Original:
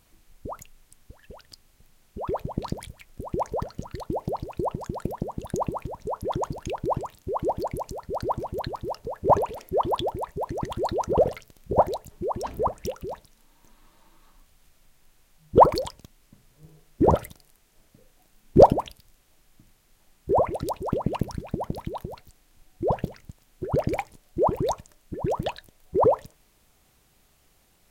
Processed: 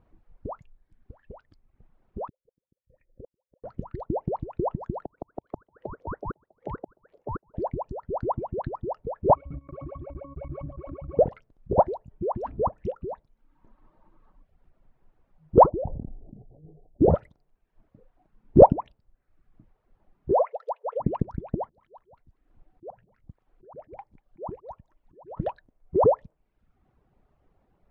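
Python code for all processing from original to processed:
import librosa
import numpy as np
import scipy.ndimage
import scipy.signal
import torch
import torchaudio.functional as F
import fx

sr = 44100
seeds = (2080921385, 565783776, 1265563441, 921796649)

y = fx.chain(x, sr, fx.formant_cascade(vowel='e'),
    fx.gate_flip(shuts_db=-37.0, range_db=-40),
    fx.low_shelf(hz=330.0, db=9.5), at=(2.28, 3.64))
y = fx.chain(y, sr, fx.gate_flip(shuts_db=-20.0, range_db=-25),
    fx.ring_mod(carrier_hz=500.0),
    fx.band_squash(depth_pct=40), at=(5.03, 7.54))
y = fx.chain(y, sr, fx.schmitt(flips_db=-33.5),
    fx.octave_resonator(note='C#', decay_s=0.12),
    fx.pre_swell(db_per_s=36.0), at=(9.35, 11.19))
y = fx.chain(y, sr, fx.ellip_lowpass(hz=760.0, order=4, stop_db=40),
    fx.sustainer(db_per_s=30.0), at=(15.7, 17.11))
y = fx.chain(y, sr, fx.brickwall_highpass(low_hz=440.0),
    fx.peak_eq(hz=2100.0, db=3.5, octaves=0.43), at=(20.33, 21.0))
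y = fx.chain(y, sr, fx.auto_swell(attack_ms=456.0),
    fx.echo_wet_highpass(ms=191, feedback_pct=35, hz=1600.0, wet_db=-11.5), at=(21.63, 25.37))
y = scipy.signal.sosfilt(scipy.signal.butter(2, 1000.0, 'lowpass', fs=sr, output='sos'), y)
y = fx.dereverb_blind(y, sr, rt60_s=0.76)
y = F.gain(torch.from_numpy(y), 1.0).numpy()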